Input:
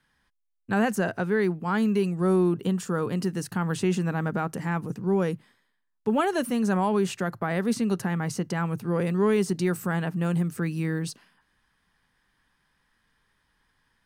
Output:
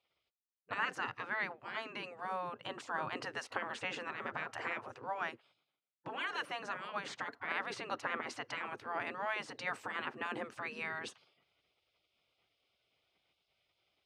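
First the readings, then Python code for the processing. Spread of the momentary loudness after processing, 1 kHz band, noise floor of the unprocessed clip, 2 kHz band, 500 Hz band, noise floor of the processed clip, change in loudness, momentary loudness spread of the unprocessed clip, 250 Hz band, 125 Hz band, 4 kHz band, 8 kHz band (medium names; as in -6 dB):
5 LU, -7.5 dB, -74 dBFS, -4.0 dB, -18.0 dB, under -85 dBFS, -13.5 dB, 6 LU, -26.0 dB, -29.5 dB, -4.5 dB, -16.0 dB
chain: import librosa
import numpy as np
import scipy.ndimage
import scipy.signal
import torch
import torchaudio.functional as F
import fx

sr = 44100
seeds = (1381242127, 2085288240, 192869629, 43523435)

y = fx.rider(x, sr, range_db=10, speed_s=0.5)
y = fx.bandpass_edges(y, sr, low_hz=220.0, high_hz=2800.0)
y = fx.spec_gate(y, sr, threshold_db=-15, keep='weak')
y = y * librosa.db_to_amplitude(2.0)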